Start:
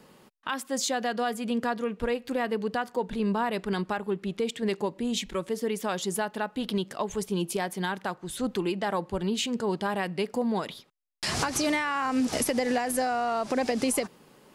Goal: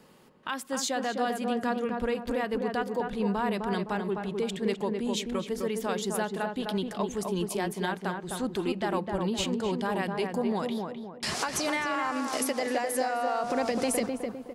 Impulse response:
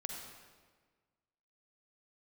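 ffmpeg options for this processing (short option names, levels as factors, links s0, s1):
-filter_complex "[0:a]asettb=1/sr,asplit=3[s0][s1][s2];[s0]atrim=end=11.344[s3];[s1]atrim=start=11.34:end=13.44,asetpts=PTS-STARTPTS,afade=t=in:d=0.004:c=qsin,afade=t=out:st=2.096:d=0.004:c=qsin,highpass=340[s4];[s2]atrim=start=13.436[s5];[s3][s4]acrossfade=d=0.004:c1=hsin:c2=qsin[s6];[s6][s5]acrossfade=d=0.004:c1=qsin:c2=hsin,asplit=2[s7][s8];[s8]adelay=257,lowpass=f=1300:p=1,volume=0.708,asplit=2[s9][s10];[s10]adelay=257,lowpass=f=1300:p=1,volume=0.44,asplit=2[s11][s12];[s12]adelay=257,lowpass=f=1300:p=1,volume=0.44,asplit=2[s13][s14];[s14]adelay=257,lowpass=f=1300:p=1,volume=0.44,asplit=2[s15][s16];[s16]adelay=257,lowpass=f=1300:p=1,volume=0.44,asplit=2[s17][s18];[s18]adelay=257,lowpass=f=1300:p=1,volume=0.44[s19];[s7][s9][s11][s13][s15][s17][s19]amix=inputs=7:normalize=0,volume=0.794"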